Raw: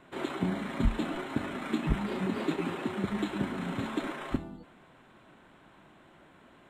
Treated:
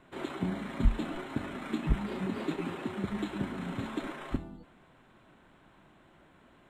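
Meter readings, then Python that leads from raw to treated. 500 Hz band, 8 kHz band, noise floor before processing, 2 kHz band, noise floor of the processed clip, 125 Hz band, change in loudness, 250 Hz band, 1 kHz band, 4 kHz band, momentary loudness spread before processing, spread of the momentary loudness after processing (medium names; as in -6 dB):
-3.0 dB, -3.5 dB, -58 dBFS, -3.5 dB, -61 dBFS, -0.5 dB, -2.0 dB, -2.5 dB, -3.5 dB, -3.5 dB, 5 LU, 7 LU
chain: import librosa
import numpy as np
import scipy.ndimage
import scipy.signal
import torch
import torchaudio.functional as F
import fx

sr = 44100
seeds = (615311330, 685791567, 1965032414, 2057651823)

y = fx.low_shelf(x, sr, hz=88.0, db=8.0)
y = y * 10.0 ** (-3.5 / 20.0)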